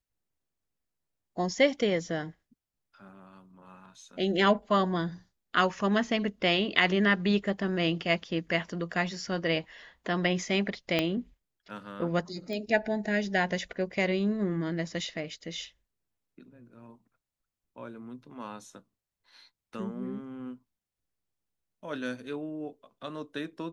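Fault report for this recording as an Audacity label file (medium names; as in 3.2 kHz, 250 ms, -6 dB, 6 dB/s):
10.990000	10.990000	pop -13 dBFS
12.530000	12.530000	pop -25 dBFS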